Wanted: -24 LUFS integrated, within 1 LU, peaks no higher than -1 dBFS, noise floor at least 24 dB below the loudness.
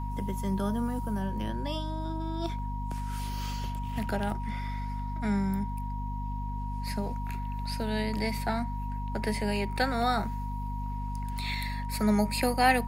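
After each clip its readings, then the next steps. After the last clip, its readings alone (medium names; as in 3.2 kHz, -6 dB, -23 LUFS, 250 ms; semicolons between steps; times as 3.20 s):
hum 50 Hz; highest harmonic 250 Hz; hum level -32 dBFS; steady tone 950 Hz; tone level -39 dBFS; loudness -32.0 LUFS; peak level -12.0 dBFS; loudness target -24.0 LUFS
-> de-hum 50 Hz, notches 5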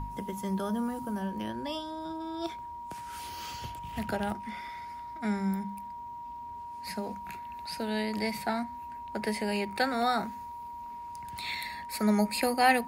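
hum not found; steady tone 950 Hz; tone level -39 dBFS
-> band-stop 950 Hz, Q 30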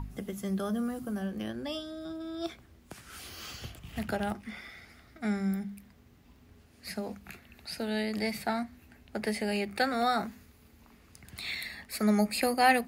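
steady tone not found; loudness -33.0 LUFS; peak level -12.0 dBFS; loudness target -24.0 LUFS
-> trim +9 dB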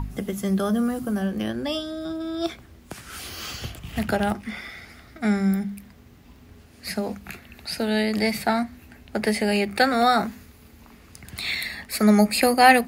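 loudness -24.0 LUFS; peak level -3.0 dBFS; noise floor -50 dBFS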